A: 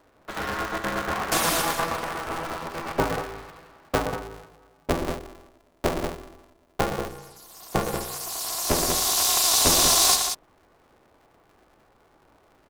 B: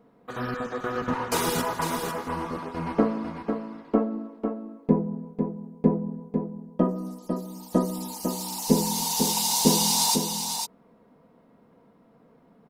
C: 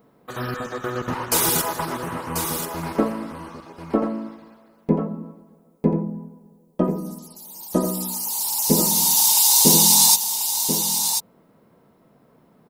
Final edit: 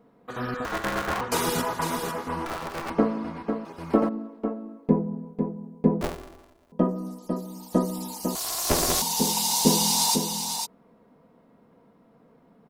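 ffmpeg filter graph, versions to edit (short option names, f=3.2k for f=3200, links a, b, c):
-filter_complex "[0:a]asplit=4[a][b][c][d];[1:a]asplit=6[e][f][g][h][i][j];[e]atrim=end=0.652[k];[a]atrim=start=0.648:end=1.212[l];[f]atrim=start=1.208:end=2.462[m];[b]atrim=start=2.458:end=2.902[n];[g]atrim=start=2.898:end=3.652[o];[2:a]atrim=start=3.648:end=4.092[p];[h]atrim=start=4.088:end=6.012[q];[c]atrim=start=6.008:end=6.722[r];[i]atrim=start=6.718:end=8.352[s];[d]atrim=start=8.348:end=9.022[t];[j]atrim=start=9.018[u];[k][l]acrossfade=d=0.004:c1=hsin:c2=hsin[v];[v][m]acrossfade=d=0.004:c1=hsin:c2=hsin[w];[w][n]acrossfade=d=0.004:c1=hsin:c2=hsin[x];[x][o]acrossfade=d=0.004:c1=hsin:c2=hsin[y];[y][p]acrossfade=d=0.004:c1=hsin:c2=hsin[z];[z][q]acrossfade=d=0.004:c1=hsin:c2=hsin[aa];[aa][r]acrossfade=d=0.004:c1=hsin:c2=hsin[ab];[ab][s]acrossfade=d=0.004:c1=hsin:c2=hsin[ac];[ac][t]acrossfade=d=0.004:c1=hsin:c2=hsin[ad];[ad][u]acrossfade=d=0.004:c1=hsin:c2=hsin"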